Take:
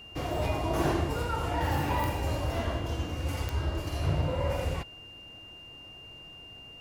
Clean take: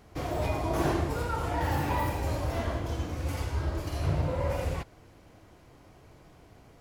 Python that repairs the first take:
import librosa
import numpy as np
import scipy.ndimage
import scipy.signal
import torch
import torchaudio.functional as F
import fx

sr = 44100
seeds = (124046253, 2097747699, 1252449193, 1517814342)

y = fx.fix_declick_ar(x, sr, threshold=10.0)
y = fx.notch(y, sr, hz=2800.0, q=30.0)